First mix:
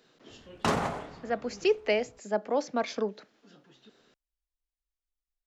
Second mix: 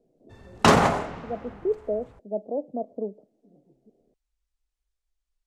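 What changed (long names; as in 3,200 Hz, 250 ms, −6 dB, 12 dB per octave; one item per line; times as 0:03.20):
speech: add elliptic low-pass filter 680 Hz, stop band 60 dB
background +10.5 dB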